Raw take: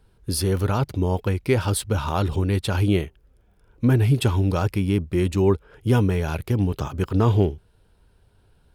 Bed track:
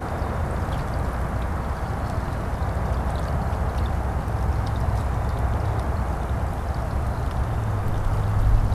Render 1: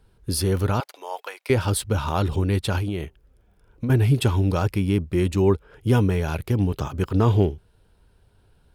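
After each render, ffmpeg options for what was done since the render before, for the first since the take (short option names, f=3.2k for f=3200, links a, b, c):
-filter_complex "[0:a]asettb=1/sr,asplit=3[a][b][c];[a]atrim=end=0.804[d];[b]atrim=start=0.8:end=1.5,asetpts=PTS-STARTPTS,afade=t=in:d=0.004:c=qsin,afade=t=out:st=0.696:d=0.004:c=qsin,highpass=f=650:w=0.5412,highpass=f=650:w=1.3066[e];[c]atrim=start=1.496[f];[d][e]acrossfade=d=0.004:c1=hsin:c2=qsin[g];[g][f]acrossfade=d=0.004:c1=qsin:c2=hsin,asettb=1/sr,asplit=3[h][i][j];[h]atrim=end=2.784[k];[i]atrim=start=2.78:end=3.9,asetpts=PTS-STARTPTS,afade=t=in:d=0.004:c=qsin,afade=t=out:st=1.116:d=0.004:c=qsin,acompressor=threshold=-22dB:ratio=10:attack=3.2:release=140:knee=1:detection=peak[l];[j]atrim=start=3.896[m];[k][l]acrossfade=d=0.004:c1=hsin:c2=qsin[n];[n][m]acrossfade=d=0.004:c1=qsin:c2=hsin"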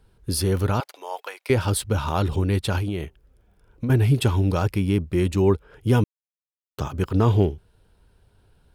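-filter_complex "[0:a]asplit=3[a][b][c];[a]atrim=end=6.04,asetpts=PTS-STARTPTS,afade=t=out:st=6.036:d=0.004:c=hsin[d];[b]atrim=start=6.04:end=6.78,asetpts=PTS-STARTPTS,volume=0[e];[c]atrim=start=6.78,asetpts=PTS-STARTPTS,afade=t=in:d=0.004:c=hsin[f];[d][e][f]concat=n=3:v=0:a=1"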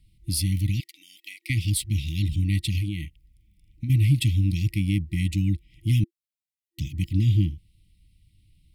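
-af "afftfilt=real='re*(1-between(b*sr/4096,340,1900))':imag='im*(1-between(b*sr/4096,340,1900))':win_size=4096:overlap=0.75,equalizer=f=250:t=o:w=0.33:g=-11,equalizer=f=400:t=o:w=0.33:g=-9,equalizer=f=6.3k:t=o:w=0.33:g=-4"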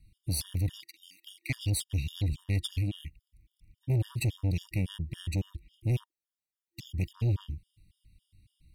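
-af "asoftclip=type=tanh:threshold=-23dB,afftfilt=real='re*gt(sin(2*PI*3.6*pts/sr)*(1-2*mod(floor(b*sr/1024/940),2)),0)':imag='im*gt(sin(2*PI*3.6*pts/sr)*(1-2*mod(floor(b*sr/1024/940),2)),0)':win_size=1024:overlap=0.75"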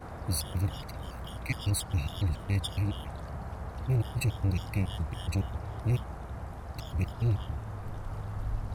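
-filter_complex "[1:a]volume=-14.5dB[a];[0:a][a]amix=inputs=2:normalize=0"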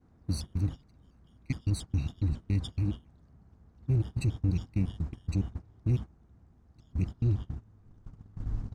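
-af "agate=range=-19dB:threshold=-33dB:ratio=16:detection=peak,firequalizer=gain_entry='entry(110,0);entry(250,5);entry(570,-11);entry(6400,-3);entry(12000,-20)':delay=0.05:min_phase=1"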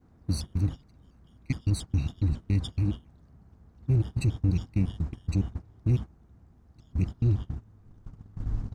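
-af "volume=3dB"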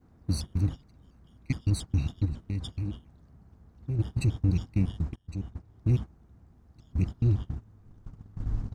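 -filter_complex "[0:a]asettb=1/sr,asplit=3[a][b][c];[a]atrim=end=2.254[d];[b]atrim=start=2.25:end=3.99,asetpts=PTS-STARTPTS,afade=t=in:d=0.004:c=qsin,afade=t=out:st=1.736:d=0.004:c=qsin,acompressor=threshold=-33dB:ratio=2:attack=3.2:release=140:knee=1:detection=peak[e];[c]atrim=start=3.986[f];[d][e]acrossfade=d=0.004:c1=hsin:c2=qsin[g];[g][f]acrossfade=d=0.004:c1=qsin:c2=hsin,asplit=2[h][i];[h]atrim=end=5.16,asetpts=PTS-STARTPTS,afade=t=out:st=5.156:d=0.004:c=hsin:silence=0.0944061[j];[i]atrim=start=5.16,asetpts=PTS-STARTPTS,afade=t=in:d=0.71:silence=0.0944061[k];[j][k]concat=n=2:v=0:a=1"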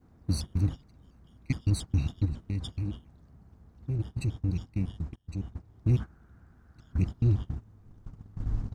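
-filter_complex "[0:a]asettb=1/sr,asplit=3[a][b][c];[a]atrim=end=6.004[d];[b]atrim=start=6:end=6.98,asetpts=PTS-STARTPTS,afade=t=in:d=0.004:c=qsin,afade=t=out:st=0.976:d=0.004:c=qsin,equalizer=f=1.5k:t=o:w=0.52:g=14.5[e];[c]atrim=start=6.976[f];[d][e]acrossfade=d=0.004:c1=hsin:c2=qsin[g];[g][f]acrossfade=d=0.004:c1=qsin:c2=hsin,asplit=3[h][i][j];[h]atrim=end=3.982[k];[i]atrim=start=3.978:end=5.272,asetpts=PTS-STARTPTS,volume=-4.5dB[l];[j]atrim=start=5.268[m];[k][l]acrossfade=d=0.004:c1=hsin:c2=hsin[n];[n][m]acrossfade=d=0.004:c1=hsin:c2=hsin"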